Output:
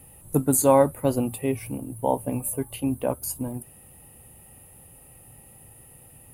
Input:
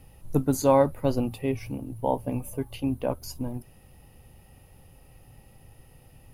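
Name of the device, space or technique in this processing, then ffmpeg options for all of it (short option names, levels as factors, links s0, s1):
budget condenser microphone: -af "highpass=f=95:p=1,highshelf=f=6900:t=q:w=3:g=8,volume=1.33"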